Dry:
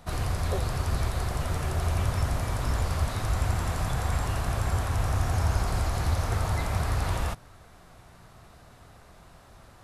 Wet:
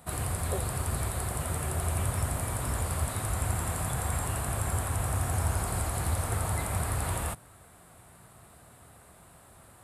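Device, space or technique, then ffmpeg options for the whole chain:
budget condenser microphone: -af "highpass=65,highshelf=frequency=7100:width_type=q:width=3:gain=7,volume=-2dB"

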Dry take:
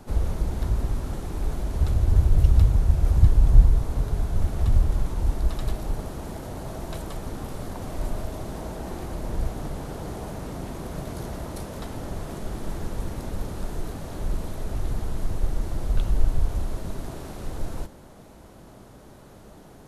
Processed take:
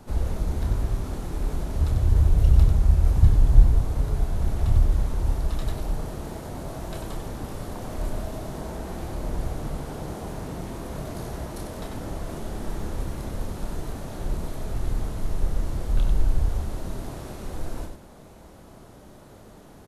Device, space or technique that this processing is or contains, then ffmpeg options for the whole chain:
slapback doubling: -filter_complex "[0:a]asplit=3[link_01][link_02][link_03];[link_02]adelay=28,volume=-6.5dB[link_04];[link_03]adelay=95,volume=-6dB[link_05];[link_01][link_04][link_05]amix=inputs=3:normalize=0,volume=-1.5dB"

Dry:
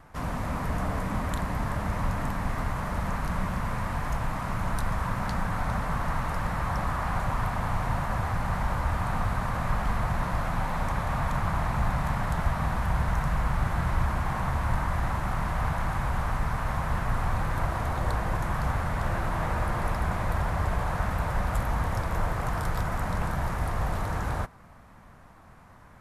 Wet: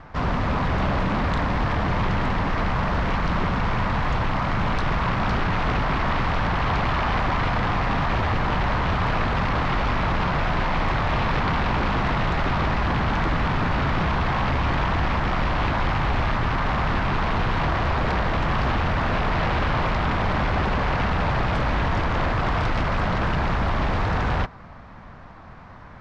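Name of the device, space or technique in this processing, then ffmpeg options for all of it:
synthesiser wavefolder: -af "aeval=exprs='0.0501*(abs(mod(val(0)/0.0501+3,4)-2)-1)':channel_layout=same,lowpass=frequency=4900:width=0.5412,lowpass=frequency=4900:width=1.3066,volume=9dB"

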